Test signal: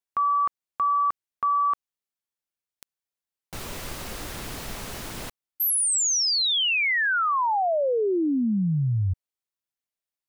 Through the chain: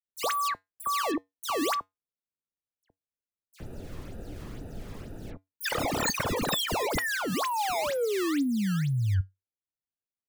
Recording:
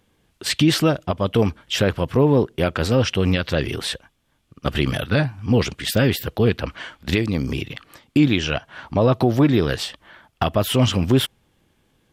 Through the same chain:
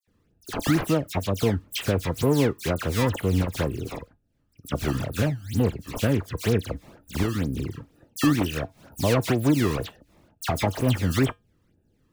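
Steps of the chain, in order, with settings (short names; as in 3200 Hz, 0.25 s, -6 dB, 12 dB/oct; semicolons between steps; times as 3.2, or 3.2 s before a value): Wiener smoothing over 41 samples; in parallel at -3 dB: compressor, threshold -27 dBFS; on the sum: decimation with a swept rate 17×, swing 160% 2.1 Hz; resonator 95 Hz, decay 0.18 s, harmonics odd, mix 40%; dispersion lows, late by 75 ms, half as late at 2700 Hz; gain -2.5 dB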